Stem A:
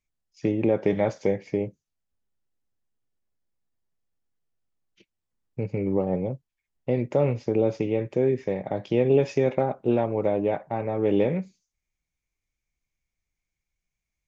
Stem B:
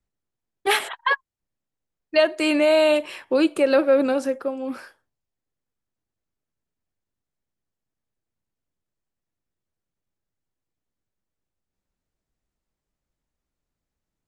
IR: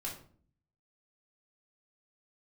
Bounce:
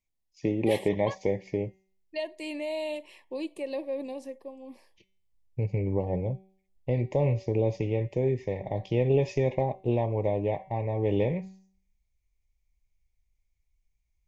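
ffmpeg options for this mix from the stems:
-filter_complex "[0:a]bandreject=f=190.7:t=h:w=4,bandreject=f=381.4:t=h:w=4,bandreject=f=572.1:t=h:w=4,bandreject=f=762.8:t=h:w=4,bandreject=f=953.5:t=h:w=4,bandreject=f=1.1442k:t=h:w=4,bandreject=f=1.3349k:t=h:w=4,bandreject=f=1.5256k:t=h:w=4,bandreject=f=1.7163k:t=h:w=4,bandreject=f=1.907k:t=h:w=4,bandreject=f=2.0977k:t=h:w=4,bandreject=f=2.2884k:t=h:w=4,bandreject=f=2.4791k:t=h:w=4,bandreject=f=2.6698k:t=h:w=4,bandreject=f=2.8605k:t=h:w=4,bandreject=f=3.0512k:t=h:w=4,bandreject=f=3.2419k:t=h:w=4,bandreject=f=3.4326k:t=h:w=4,bandreject=f=3.6233k:t=h:w=4,bandreject=f=3.814k:t=h:w=4,bandreject=f=4.0047k:t=h:w=4,bandreject=f=4.1954k:t=h:w=4,bandreject=f=4.3861k:t=h:w=4,bandreject=f=4.5768k:t=h:w=4,bandreject=f=4.7675k:t=h:w=4,bandreject=f=4.9582k:t=h:w=4,bandreject=f=5.1489k:t=h:w=4,bandreject=f=5.3396k:t=h:w=4,bandreject=f=5.5303k:t=h:w=4,bandreject=f=5.721k:t=h:w=4,bandreject=f=5.9117k:t=h:w=4,bandreject=f=6.1024k:t=h:w=4,bandreject=f=6.2931k:t=h:w=4,bandreject=f=6.4838k:t=h:w=4,bandreject=f=6.6745k:t=h:w=4,bandreject=f=6.8652k:t=h:w=4,bandreject=f=7.0559k:t=h:w=4,bandreject=f=7.2466k:t=h:w=4,asubboost=boost=6.5:cutoff=85,volume=-2.5dB[a];[1:a]volume=-15.5dB[b];[a][b]amix=inputs=2:normalize=0,asuperstop=centerf=1400:order=8:qfactor=2.1"

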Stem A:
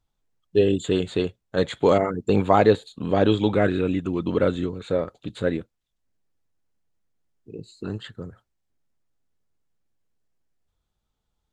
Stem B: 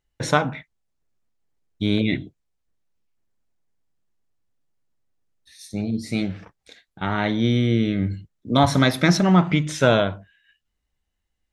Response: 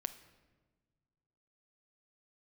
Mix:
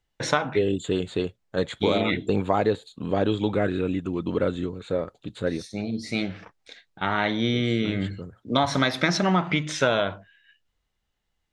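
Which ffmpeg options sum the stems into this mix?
-filter_complex "[0:a]volume=-2.5dB[a];[1:a]lowpass=6.1k,lowshelf=f=320:g=-10,volume=2.5dB[b];[a][b]amix=inputs=2:normalize=0,acompressor=threshold=-17dB:ratio=6"

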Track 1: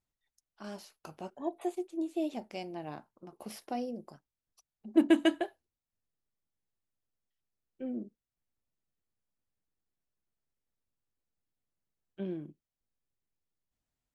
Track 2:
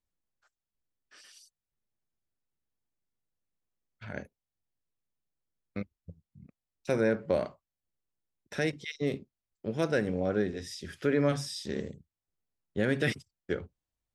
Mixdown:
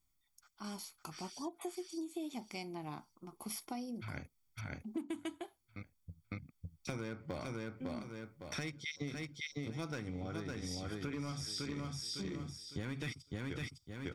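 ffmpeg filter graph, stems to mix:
-filter_complex "[0:a]highshelf=f=5k:g=11,volume=-2.5dB,asplit=2[a][b];[1:a]equalizer=f=200:t=o:w=0.33:g=-10,equalizer=f=400:t=o:w=0.33:g=-7,equalizer=f=1k:t=o:w=0.33:g=-5,equalizer=f=5k:t=o:w=0.33:g=5,asoftclip=type=hard:threshold=-22.5dB,volume=1.5dB,asplit=2[c][d];[d]volume=-4dB[e];[b]apad=whole_len=623821[f];[c][f]sidechaincompress=threshold=-39dB:ratio=10:attack=10:release=1210[g];[e]aecho=0:1:556|1112|1668|2224:1|0.24|0.0576|0.0138[h];[a][g][h]amix=inputs=3:normalize=0,aecho=1:1:0.9:0.66,acompressor=threshold=-38dB:ratio=8"

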